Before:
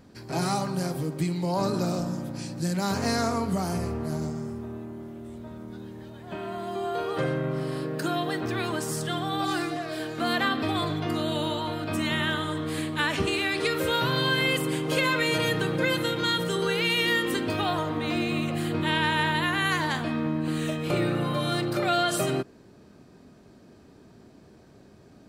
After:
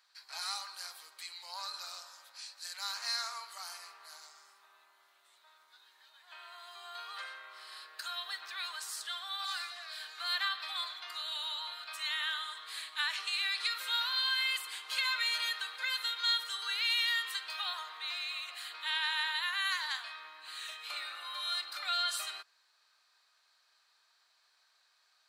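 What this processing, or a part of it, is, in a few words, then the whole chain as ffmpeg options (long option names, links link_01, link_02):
headphones lying on a table: -af "highpass=frequency=1100:width=0.5412,highpass=frequency=1100:width=1.3066,equalizer=frequency=4100:width_type=o:width=0.43:gain=9.5,volume=-7.5dB"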